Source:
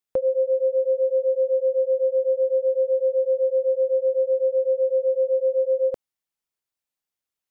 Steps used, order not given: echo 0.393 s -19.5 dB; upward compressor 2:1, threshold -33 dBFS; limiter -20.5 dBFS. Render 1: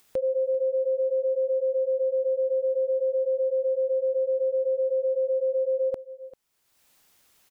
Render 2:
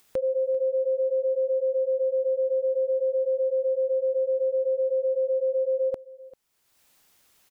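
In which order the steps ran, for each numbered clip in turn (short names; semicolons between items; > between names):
upward compressor > echo > limiter; limiter > upward compressor > echo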